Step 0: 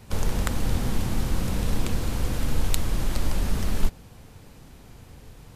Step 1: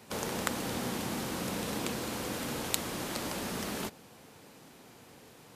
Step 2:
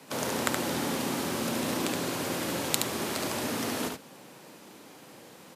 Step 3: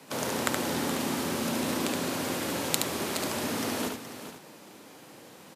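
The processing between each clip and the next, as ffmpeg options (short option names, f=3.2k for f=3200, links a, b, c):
-af "highpass=240,volume=-1dB"
-af "aecho=1:1:72:0.631,afreqshift=45,volume=3dB"
-af "aecho=1:1:422:0.282"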